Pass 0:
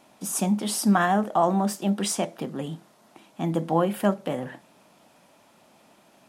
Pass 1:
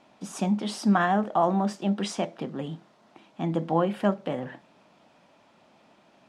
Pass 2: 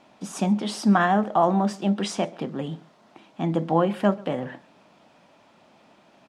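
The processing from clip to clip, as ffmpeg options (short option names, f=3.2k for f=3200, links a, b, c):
-af "lowpass=4.7k,volume=-1.5dB"
-filter_complex "[0:a]asplit=2[a][b];[b]adelay=134.1,volume=-24dB,highshelf=f=4k:g=-3.02[c];[a][c]amix=inputs=2:normalize=0,volume=3dB"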